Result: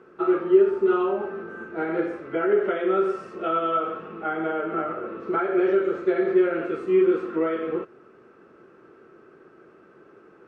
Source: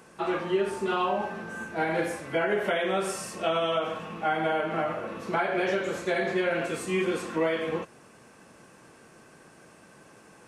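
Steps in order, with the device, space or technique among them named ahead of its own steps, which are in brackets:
inside a cardboard box (low-pass filter 2,700 Hz 12 dB per octave; hollow resonant body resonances 380/1,300 Hz, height 17 dB, ringing for 30 ms)
level −6.5 dB

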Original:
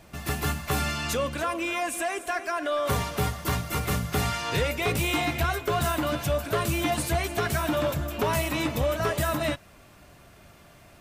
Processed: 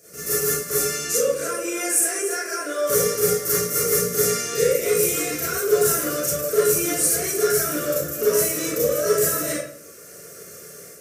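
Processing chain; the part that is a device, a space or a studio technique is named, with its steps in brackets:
drawn EQ curve 160 Hz 0 dB, 290 Hz −5 dB, 470 Hz +15 dB, 870 Hz −23 dB, 1,300 Hz +1 dB, 2,400 Hz −4 dB, 3,500 Hz −9 dB, 5,800 Hz +15 dB
far laptop microphone (convolution reverb RT60 0.50 s, pre-delay 30 ms, DRR −9 dB; high-pass filter 180 Hz 12 dB per octave; automatic gain control gain up to 5 dB)
level −6 dB

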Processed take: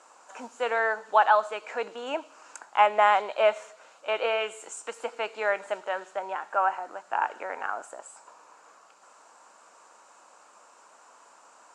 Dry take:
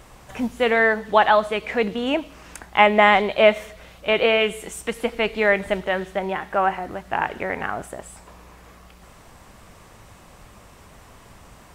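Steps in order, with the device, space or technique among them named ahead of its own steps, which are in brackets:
phone speaker on a table (loudspeaker in its box 360–8,600 Hz, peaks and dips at 390 Hz −7 dB, 930 Hz +6 dB, 1,400 Hz +7 dB, 2,000 Hz −8 dB, 3,400 Hz −7 dB, 7,200 Hz +9 dB)
level −7 dB

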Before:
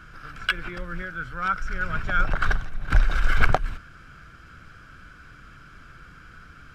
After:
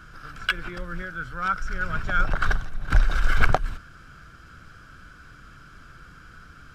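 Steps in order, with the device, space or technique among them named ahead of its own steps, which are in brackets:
exciter from parts (in parallel at −7 dB: high-pass filter 2,100 Hz 24 dB per octave + soft clipping −34 dBFS, distortion −4 dB)

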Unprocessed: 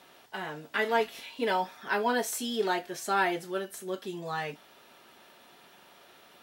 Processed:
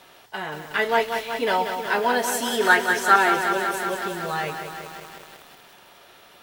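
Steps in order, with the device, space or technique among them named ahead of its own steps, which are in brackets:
0:02.51–0:03.16: parametric band 1,600 Hz +14.5 dB 0.85 octaves
low shelf boost with a cut just above (low-shelf EQ 100 Hz +7.5 dB; parametric band 230 Hz −5 dB 1.2 octaves)
feedback echo at a low word length 184 ms, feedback 80%, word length 8 bits, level −7 dB
level +6 dB

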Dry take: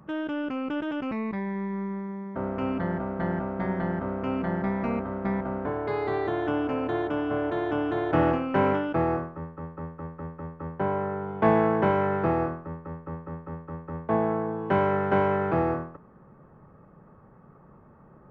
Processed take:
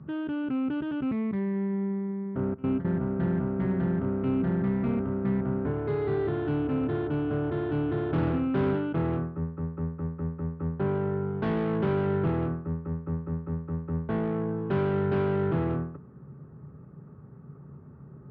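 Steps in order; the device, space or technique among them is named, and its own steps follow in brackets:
0:02.54–0:03.01: noise gate with hold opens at −19 dBFS
guitar amplifier (tube saturation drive 25 dB, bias 0.3; bass and treble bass +13 dB, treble +12 dB; loudspeaker in its box 75–3,400 Hz, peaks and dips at 77 Hz +6 dB, 140 Hz +9 dB, 260 Hz +6 dB, 400 Hz +10 dB, 1,400 Hz +5 dB)
level −7 dB

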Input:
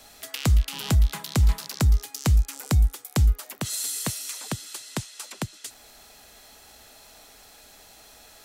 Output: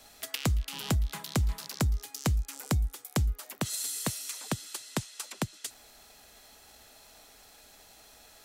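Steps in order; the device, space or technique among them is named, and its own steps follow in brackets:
drum-bus smash (transient designer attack +6 dB, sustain +1 dB; downward compressor, threshold −18 dBFS, peak gain reduction 6 dB; soft clipping −12.5 dBFS, distortion −21 dB)
level −5 dB

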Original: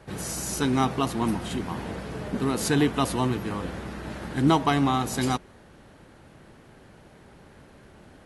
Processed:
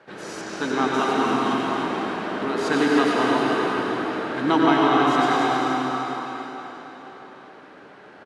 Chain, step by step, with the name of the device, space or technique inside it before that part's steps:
station announcement (band-pass filter 300–4,300 Hz; parametric band 1,500 Hz +5.5 dB 0.35 octaves; loudspeakers that aren't time-aligned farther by 32 metres −11 dB, 95 metres −10 dB; convolution reverb RT60 4.4 s, pre-delay 82 ms, DRR −3.5 dB)
0:00.41–0:00.94: high-frequency loss of the air 68 metres
delay that swaps between a low-pass and a high-pass 154 ms, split 990 Hz, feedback 57%, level −3.5 dB

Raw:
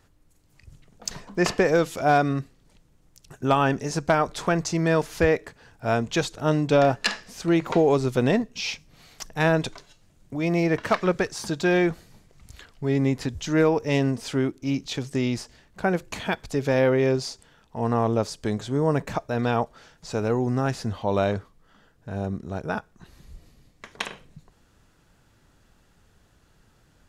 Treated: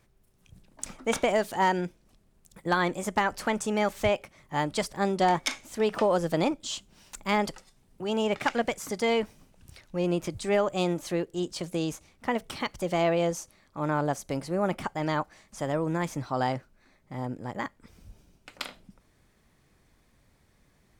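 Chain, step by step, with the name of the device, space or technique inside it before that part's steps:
nightcore (speed change +29%)
level −4.5 dB

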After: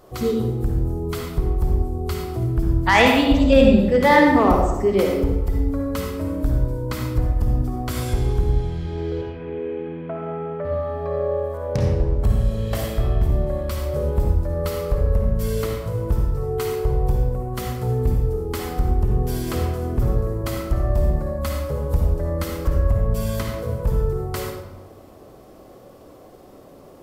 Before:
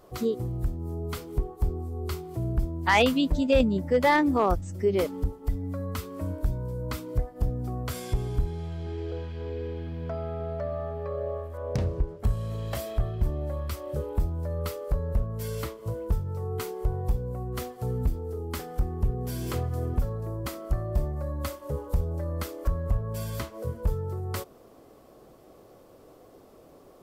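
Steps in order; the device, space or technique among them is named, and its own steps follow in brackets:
0:09.21–0:10.65: elliptic band-pass filter 130–2,700 Hz, stop band 40 dB
bathroom (convolution reverb RT60 1.1 s, pre-delay 48 ms, DRR 0 dB)
level +4.5 dB

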